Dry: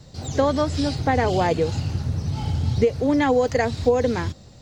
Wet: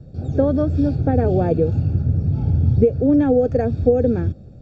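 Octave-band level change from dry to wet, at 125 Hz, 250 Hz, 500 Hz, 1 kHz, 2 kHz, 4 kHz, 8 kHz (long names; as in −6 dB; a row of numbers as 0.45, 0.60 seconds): +6.5 dB, +5.5 dB, +2.5 dB, −6.0 dB, −11.0 dB, below −15 dB, below −20 dB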